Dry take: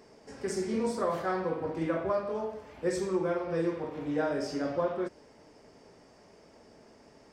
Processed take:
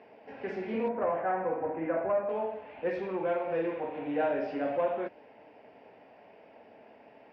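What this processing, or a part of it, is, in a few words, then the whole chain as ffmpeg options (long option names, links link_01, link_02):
overdrive pedal into a guitar cabinet: -filter_complex "[0:a]asplit=2[link_01][link_02];[link_02]highpass=frequency=720:poles=1,volume=13dB,asoftclip=type=tanh:threshold=-17.5dB[link_03];[link_01][link_03]amix=inputs=2:normalize=0,lowpass=frequency=1100:poles=1,volume=-6dB,highpass=100,equalizer=frequency=160:width_type=q:width=4:gain=-6,equalizer=frequency=370:width_type=q:width=4:gain=-6,equalizer=frequency=740:width_type=q:width=4:gain=4,equalizer=frequency=1200:width_type=q:width=4:gain=-9,equalizer=frequency=2600:width_type=q:width=4:gain=8,lowpass=frequency=3400:width=0.5412,lowpass=frequency=3400:width=1.3066,asettb=1/sr,asplit=3[link_04][link_05][link_06];[link_04]atrim=end=0.884[link_07];[link_05]atrim=start=0.88:end=2.29,asetpts=PTS-STARTPTS,afade=type=in:duration=0.004:curve=qsin,afade=type=out:start_time=1.406:duration=0.004:curve=qsin,lowpass=frequency=2000:width=0.5412,lowpass=frequency=2000:width=1.3066[link_08];[link_06]atrim=start=2.286[link_09];[link_07][link_08]acrossfade=duration=0.004:curve1=hsin:curve2=qsin[link_10];[link_10][link_09]acrossfade=duration=0.004:curve1=qsin:curve2=hsin"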